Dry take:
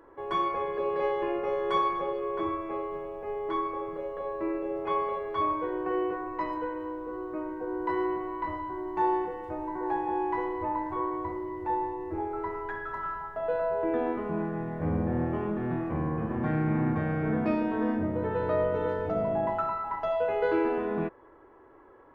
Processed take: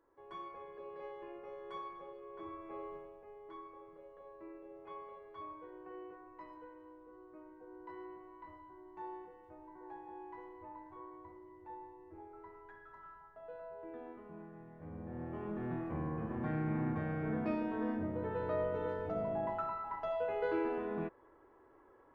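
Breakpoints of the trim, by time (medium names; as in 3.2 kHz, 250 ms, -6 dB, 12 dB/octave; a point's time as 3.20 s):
2.27 s -19 dB
2.88 s -10.5 dB
3.31 s -20 dB
14.89 s -20 dB
15.60 s -8.5 dB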